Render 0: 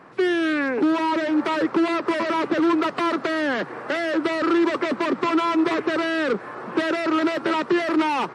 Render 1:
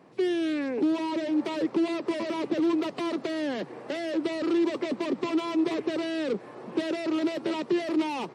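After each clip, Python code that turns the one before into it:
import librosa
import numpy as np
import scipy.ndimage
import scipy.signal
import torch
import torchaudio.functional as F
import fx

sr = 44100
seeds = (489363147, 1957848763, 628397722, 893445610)

y = scipy.signal.sosfilt(scipy.signal.butter(2, 96.0, 'highpass', fs=sr, output='sos'), x)
y = fx.peak_eq(y, sr, hz=1400.0, db=-14.0, octaves=1.1)
y = y * 10.0 ** (-4.0 / 20.0)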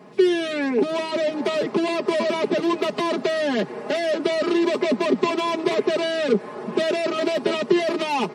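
y = x + 0.95 * np.pad(x, (int(4.8 * sr / 1000.0), 0))[:len(x)]
y = y * 10.0 ** (6.5 / 20.0)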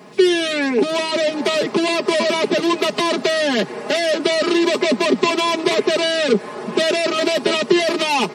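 y = fx.high_shelf(x, sr, hz=2300.0, db=9.5)
y = y * 10.0 ** (3.0 / 20.0)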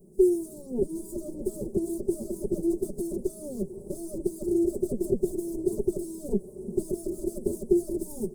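y = fx.lower_of_two(x, sr, delay_ms=5.4)
y = scipy.signal.sosfilt(scipy.signal.ellip(3, 1.0, 80, [420.0, 9100.0], 'bandstop', fs=sr, output='sos'), y)
y = y * 10.0 ** (-6.0 / 20.0)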